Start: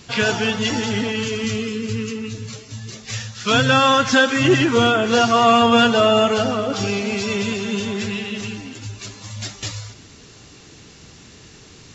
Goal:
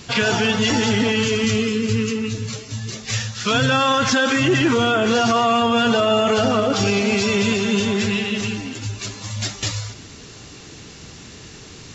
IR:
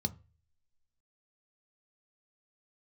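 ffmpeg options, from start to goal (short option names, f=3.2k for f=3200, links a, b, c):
-af "alimiter=limit=-14dB:level=0:latency=1:release=24,volume=4.5dB"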